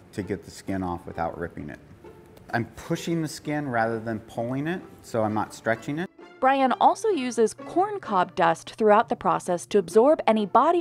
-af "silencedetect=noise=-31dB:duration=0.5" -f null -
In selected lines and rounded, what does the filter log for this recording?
silence_start: 1.75
silence_end: 2.50 | silence_duration: 0.75